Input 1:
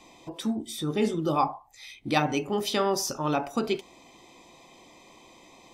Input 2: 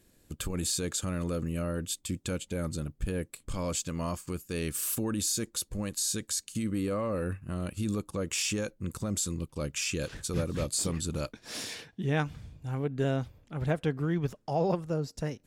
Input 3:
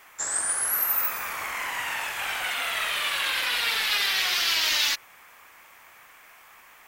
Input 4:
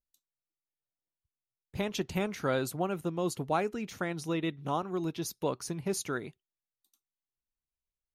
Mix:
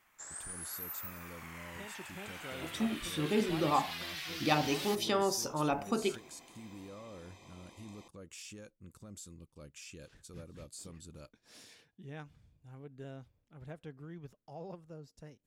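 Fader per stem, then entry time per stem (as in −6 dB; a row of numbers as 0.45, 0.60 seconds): −5.0, −18.0, −18.0, −17.0 decibels; 2.35, 0.00, 0.00, 0.00 seconds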